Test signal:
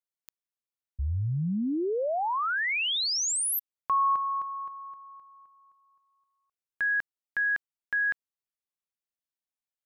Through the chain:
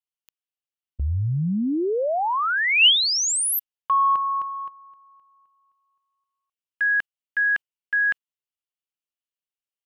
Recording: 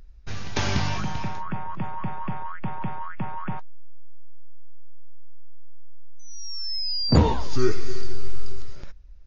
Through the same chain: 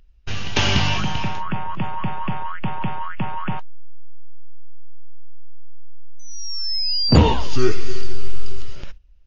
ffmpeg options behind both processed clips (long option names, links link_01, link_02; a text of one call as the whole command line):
ffmpeg -i in.wav -filter_complex "[0:a]asplit=2[link_01][link_02];[link_02]acontrast=50,volume=-2dB[link_03];[link_01][link_03]amix=inputs=2:normalize=0,agate=range=-11dB:threshold=-29dB:ratio=16:release=182:detection=peak,equalizer=frequency=2900:width=3.5:gain=11,volume=-3dB" out.wav